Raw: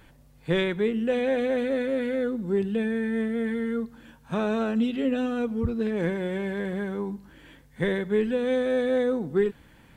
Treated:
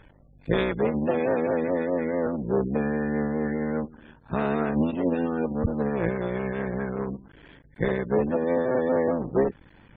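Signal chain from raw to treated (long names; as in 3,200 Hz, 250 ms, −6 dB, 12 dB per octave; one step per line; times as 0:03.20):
sub-harmonics by changed cycles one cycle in 3, muted
gate on every frequency bin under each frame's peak −25 dB strong
high-shelf EQ 3,900 Hz −6 dB, from 0:07.83 −11.5 dB, from 0:08.87 −4 dB
level +2.5 dB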